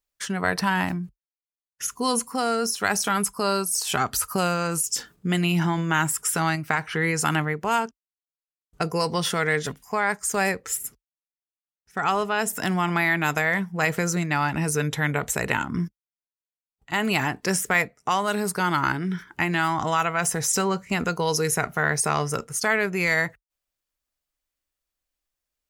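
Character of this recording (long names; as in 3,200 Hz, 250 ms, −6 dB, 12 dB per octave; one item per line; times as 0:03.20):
background noise floor −96 dBFS
spectral slope −3.5 dB per octave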